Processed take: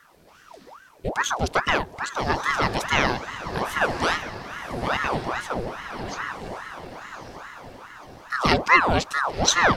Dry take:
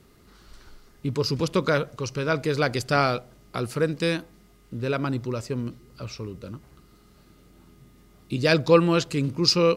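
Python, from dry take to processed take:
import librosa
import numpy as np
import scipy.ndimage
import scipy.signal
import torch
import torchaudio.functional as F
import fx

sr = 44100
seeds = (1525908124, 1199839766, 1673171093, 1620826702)

y = fx.echo_diffused(x, sr, ms=1093, feedback_pct=50, wet_db=-8.5)
y = fx.ring_lfo(y, sr, carrier_hz=900.0, swing_pct=75, hz=2.4)
y = y * librosa.db_to_amplitude(3.0)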